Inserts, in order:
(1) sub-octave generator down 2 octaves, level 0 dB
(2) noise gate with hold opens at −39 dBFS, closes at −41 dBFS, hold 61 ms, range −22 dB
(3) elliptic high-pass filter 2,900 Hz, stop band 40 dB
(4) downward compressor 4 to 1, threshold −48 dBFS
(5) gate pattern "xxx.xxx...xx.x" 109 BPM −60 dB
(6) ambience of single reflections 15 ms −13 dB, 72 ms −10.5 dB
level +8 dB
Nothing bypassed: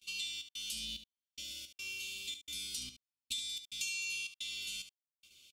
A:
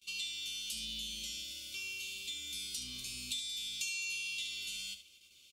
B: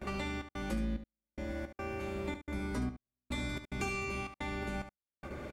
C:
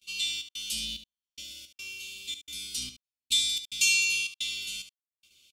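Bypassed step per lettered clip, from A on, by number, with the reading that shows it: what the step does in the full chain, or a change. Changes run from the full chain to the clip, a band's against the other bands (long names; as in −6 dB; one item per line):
5, 125 Hz band +2.0 dB
3, 8 kHz band −35.5 dB
4, average gain reduction 5.5 dB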